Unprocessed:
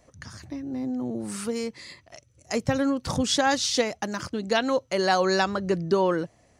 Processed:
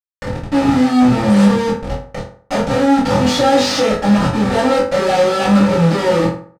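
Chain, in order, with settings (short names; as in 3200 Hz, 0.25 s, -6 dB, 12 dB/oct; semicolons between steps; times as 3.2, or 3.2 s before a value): Schmitt trigger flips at -34 dBFS; air absorption 68 m; notch 1600 Hz, Q 29; doubler 24 ms -4 dB; reverb RT60 0.50 s, pre-delay 3 ms, DRR -9.5 dB; gain +1 dB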